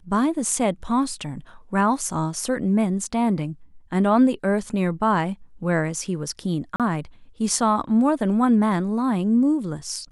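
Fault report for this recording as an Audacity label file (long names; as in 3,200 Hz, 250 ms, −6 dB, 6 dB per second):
6.760000	6.800000	drop-out 37 ms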